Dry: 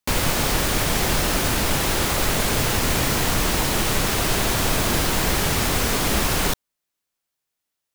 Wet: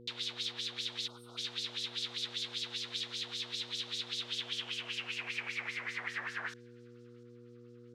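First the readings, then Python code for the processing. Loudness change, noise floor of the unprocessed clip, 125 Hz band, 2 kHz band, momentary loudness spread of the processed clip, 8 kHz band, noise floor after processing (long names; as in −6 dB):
−17.0 dB, −82 dBFS, −29.5 dB, −15.0 dB, 19 LU, −25.5 dB, −55 dBFS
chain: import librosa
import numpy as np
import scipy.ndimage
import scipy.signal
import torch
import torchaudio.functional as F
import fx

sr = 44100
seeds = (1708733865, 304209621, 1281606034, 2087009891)

y = fx.spec_box(x, sr, start_s=1.07, length_s=0.3, low_hz=1500.0, high_hz=8200.0, gain_db=-29)
y = fx.filter_lfo_bandpass(y, sr, shape='sine', hz=5.1, low_hz=600.0, high_hz=6400.0, q=1.6)
y = fx.echo_wet_highpass(y, sr, ms=694, feedback_pct=69, hz=3500.0, wet_db=-21)
y = fx.filter_sweep_bandpass(y, sr, from_hz=3700.0, to_hz=1300.0, start_s=4.17, end_s=7.15, q=5.5)
y = fx.dmg_buzz(y, sr, base_hz=120.0, harmonics=4, level_db=-56.0, tilt_db=0, odd_only=False)
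y = y * librosa.db_to_amplitude(1.5)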